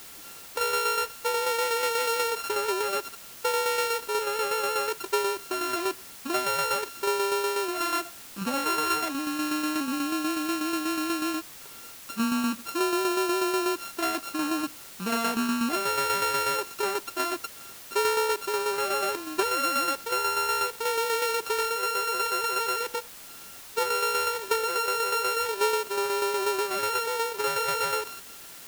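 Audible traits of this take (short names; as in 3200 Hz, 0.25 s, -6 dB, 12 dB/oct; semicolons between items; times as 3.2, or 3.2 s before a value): a buzz of ramps at a fixed pitch in blocks of 32 samples; tremolo saw down 8.2 Hz, depth 50%; a quantiser's noise floor 8-bit, dither triangular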